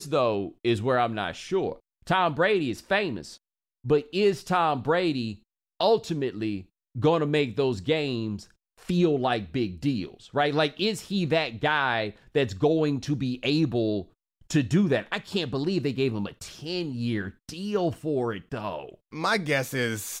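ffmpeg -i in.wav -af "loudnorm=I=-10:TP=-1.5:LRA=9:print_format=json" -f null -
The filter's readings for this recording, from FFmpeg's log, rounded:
"input_i" : "-26.8",
"input_tp" : "-11.1",
"input_lra" : "3.2",
"input_thresh" : "-37.2",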